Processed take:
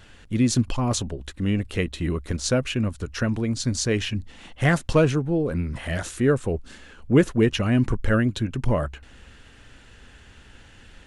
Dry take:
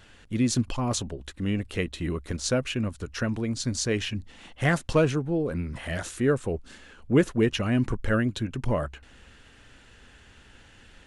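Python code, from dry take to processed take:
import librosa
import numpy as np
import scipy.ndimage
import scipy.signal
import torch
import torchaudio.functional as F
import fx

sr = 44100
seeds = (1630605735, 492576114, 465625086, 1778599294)

y = fx.low_shelf(x, sr, hz=160.0, db=3.5)
y = y * 10.0 ** (2.5 / 20.0)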